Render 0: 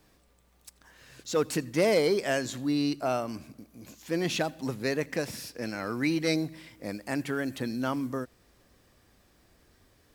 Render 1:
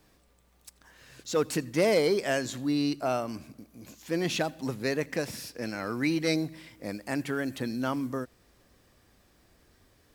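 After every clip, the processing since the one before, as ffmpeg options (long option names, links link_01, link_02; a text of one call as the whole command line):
ffmpeg -i in.wav -af anull out.wav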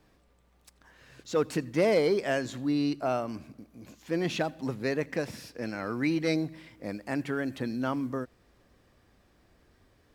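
ffmpeg -i in.wav -af "highshelf=frequency=4800:gain=-10.5" out.wav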